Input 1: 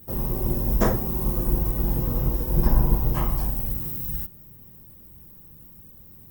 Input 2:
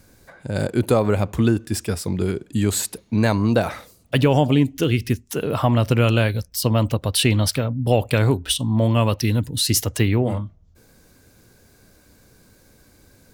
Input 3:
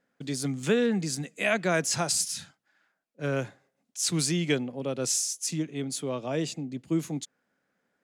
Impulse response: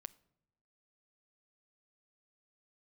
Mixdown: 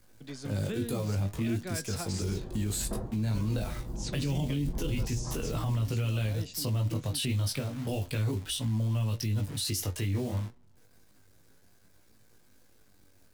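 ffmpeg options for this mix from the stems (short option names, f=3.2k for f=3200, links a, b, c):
-filter_complex "[0:a]lowpass=1.2k,adelay=2100,volume=-7.5dB[a];[1:a]acrusher=bits=7:dc=4:mix=0:aa=0.000001,flanger=delay=18.5:depth=2.4:speed=0.34,volume=-3dB,asplit=2[b][c];[c]volume=-3.5dB[d];[2:a]lowpass=5.6k,volume=-4.5dB[e];[3:a]atrim=start_sample=2205[f];[d][f]afir=irnorm=-1:irlink=0[g];[a][b][e][g]amix=inputs=4:normalize=0,flanger=delay=8:depth=3.4:regen=67:speed=0.56:shape=sinusoidal,acrossover=split=260|3000[h][i][j];[i]acompressor=threshold=-36dB:ratio=6[k];[h][k][j]amix=inputs=3:normalize=0,alimiter=limit=-23dB:level=0:latency=1:release=15"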